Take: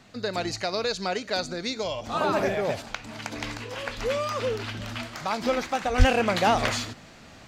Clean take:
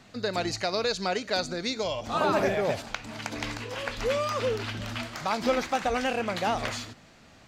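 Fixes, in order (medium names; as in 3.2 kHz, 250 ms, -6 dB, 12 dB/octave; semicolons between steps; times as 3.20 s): de-plosive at 5.98 s; trim 0 dB, from 5.98 s -6 dB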